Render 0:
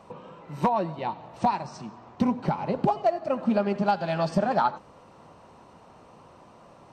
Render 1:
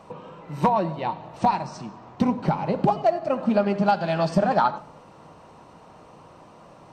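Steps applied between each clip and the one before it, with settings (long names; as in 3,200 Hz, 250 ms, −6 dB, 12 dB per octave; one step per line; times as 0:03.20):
convolution reverb RT60 0.80 s, pre-delay 6 ms, DRR 14 dB
level +3 dB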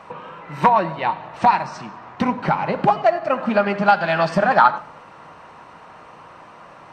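parametric band 1,700 Hz +14 dB 2 octaves
level −1 dB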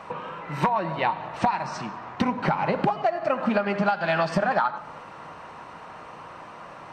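downward compressor 16 to 1, threshold −20 dBFS, peak gain reduction 13 dB
level +1 dB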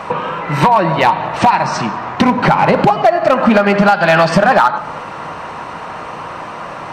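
in parallel at +1 dB: brickwall limiter −17.5 dBFS, peak gain reduction 9 dB
on the sum: hard clipping −12 dBFS, distortion −20 dB
level +8.5 dB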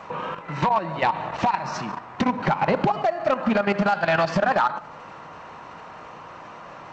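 output level in coarse steps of 11 dB
level −8 dB
G.722 64 kbit/s 16,000 Hz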